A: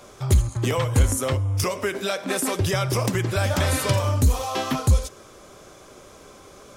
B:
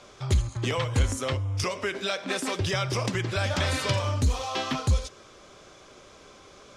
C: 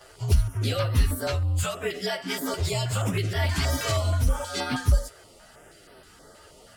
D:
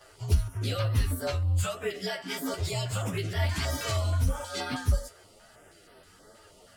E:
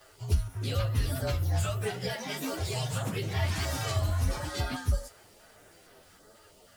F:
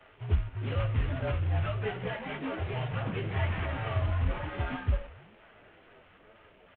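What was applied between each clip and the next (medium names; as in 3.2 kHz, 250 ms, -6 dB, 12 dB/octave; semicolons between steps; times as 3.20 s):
low-pass 4.4 kHz 12 dB/octave; treble shelf 2.3 kHz +10 dB; trim -5.5 dB
frequency axis rescaled in octaves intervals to 112%; step-sequenced notch 6.3 Hz 220–7000 Hz; trim +4.5 dB
flange 1.1 Hz, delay 8.7 ms, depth 4.3 ms, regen +55%
word length cut 10-bit, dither none; ever faster or slower copies 489 ms, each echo +3 st, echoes 3, each echo -6 dB; trim -2.5 dB
CVSD coder 16 kbps; frequency-shifting echo 93 ms, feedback 55%, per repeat -67 Hz, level -21 dB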